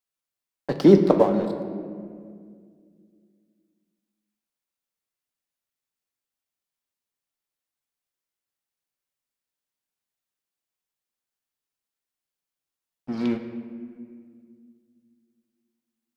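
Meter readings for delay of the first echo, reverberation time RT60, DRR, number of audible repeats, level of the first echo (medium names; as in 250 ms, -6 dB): no echo, 2.1 s, 5.5 dB, no echo, no echo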